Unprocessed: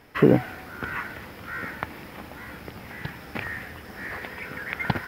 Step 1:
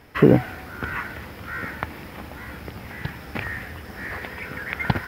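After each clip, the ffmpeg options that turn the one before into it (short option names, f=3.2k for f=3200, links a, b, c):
-af "equalizer=f=64:w=0.78:g=6,volume=2dB"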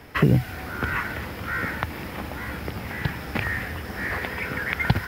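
-filter_complex "[0:a]acrossover=split=160|3000[a][b][c];[b]acompressor=threshold=-28dB:ratio=6[d];[a][d][c]amix=inputs=3:normalize=0,volume=4.5dB"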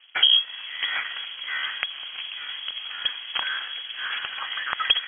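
-af "aeval=exprs='sgn(val(0))*max(abs(val(0))-0.00376,0)':c=same,adynamicsmooth=sensitivity=2.5:basefreq=1.3k,lowpass=f=2.9k:t=q:w=0.5098,lowpass=f=2.9k:t=q:w=0.6013,lowpass=f=2.9k:t=q:w=0.9,lowpass=f=2.9k:t=q:w=2.563,afreqshift=-3400"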